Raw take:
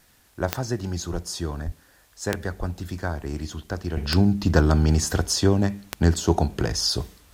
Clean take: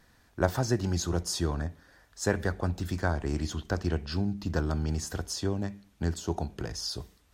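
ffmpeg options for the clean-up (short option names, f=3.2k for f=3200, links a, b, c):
-filter_complex "[0:a]adeclick=t=4,asplit=3[a][b][c];[a]afade=t=out:st=1.12:d=0.02[d];[b]highpass=f=140:w=0.5412,highpass=f=140:w=1.3066,afade=t=in:st=1.12:d=0.02,afade=t=out:st=1.24:d=0.02[e];[c]afade=t=in:st=1.24:d=0.02[f];[d][e][f]amix=inputs=3:normalize=0,asplit=3[g][h][i];[g]afade=t=out:st=1.65:d=0.02[j];[h]highpass=f=140:w=0.5412,highpass=f=140:w=1.3066,afade=t=in:st=1.65:d=0.02,afade=t=out:st=1.77:d=0.02[k];[i]afade=t=in:st=1.77:d=0.02[l];[j][k][l]amix=inputs=3:normalize=0,asplit=3[m][n][o];[m]afade=t=out:st=2.59:d=0.02[p];[n]highpass=f=140:w=0.5412,highpass=f=140:w=1.3066,afade=t=in:st=2.59:d=0.02,afade=t=out:st=2.71:d=0.02[q];[o]afade=t=in:st=2.71:d=0.02[r];[p][q][r]amix=inputs=3:normalize=0,agate=range=-21dB:threshold=-47dB,asetnsamples=n=441:p=0,asendcmd='3.97 volume volume -11dB',volume=0dB"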